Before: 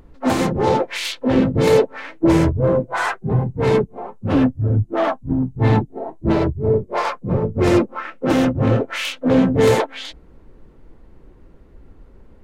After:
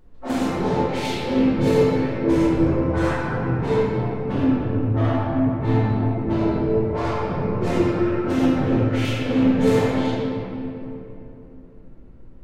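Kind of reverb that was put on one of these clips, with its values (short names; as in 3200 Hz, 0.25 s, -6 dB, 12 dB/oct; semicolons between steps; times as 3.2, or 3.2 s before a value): shoebox room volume 140 m³, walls hard, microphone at 1 m; gain -12 dB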